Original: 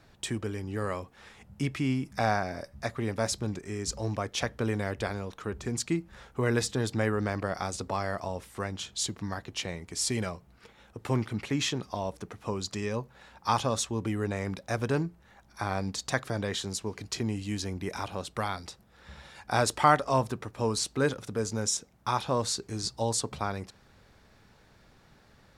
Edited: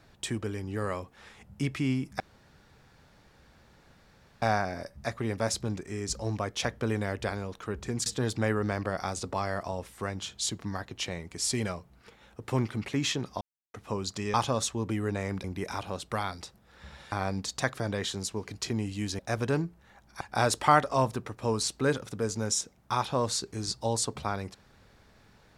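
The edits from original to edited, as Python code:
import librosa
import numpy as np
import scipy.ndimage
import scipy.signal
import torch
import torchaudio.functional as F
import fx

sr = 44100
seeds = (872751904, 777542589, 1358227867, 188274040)

y = fx.edit(x, sr, fx.insert_room_tone(at_s=2.2, length_s=2.22),
    fx.cut(start_s=5.84, length_s=0.79),
    fx.silence(start_s=11.98, length_s=0.33),
    fx.cut(start_s=12.91, length_s=0.59),
    fx.swap(start_s=14.6, length_s=1.02, other_s=17.69, other_length_s=1.68), tone=tone)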